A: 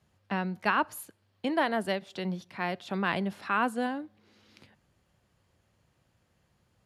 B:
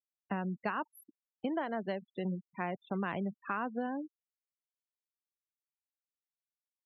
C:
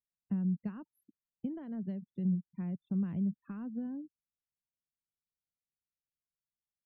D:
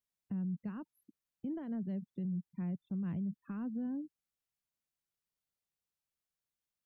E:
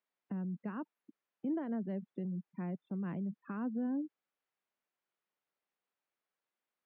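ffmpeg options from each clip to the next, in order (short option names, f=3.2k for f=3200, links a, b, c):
-af "afftfilt=real='re*gte(hypot(re,im),0.0224)':imag='im*gte(hypot(re,im),0.0224)':win_size=1024:overlap=0.75,highshelf=f=2.3k:g=-11,acompressor=threshold=-31dB:ratio=6"
-af "firequalizer=gain_entry='entry(170,0);entry(360,-16);entry(730,-28)':delay=0.05:min_phase=1,volume=7dB"
-af "alimiter=level_in=10dB:limit=-24dB:level=0:latency=1:release=46,volume=-10dB,volume=2dB"
-af "highpass=310,lowpass=2.2k,volume=7.5dB"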